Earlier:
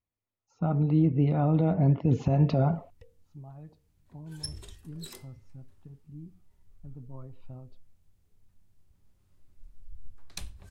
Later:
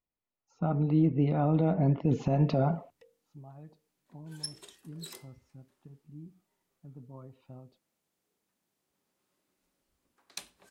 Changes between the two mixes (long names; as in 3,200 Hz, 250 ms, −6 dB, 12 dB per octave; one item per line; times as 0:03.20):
background: add high-pass filter 290 Hz 12 dB per octave
master: add parametric band 92 Hz −12 dB 0.81 octaves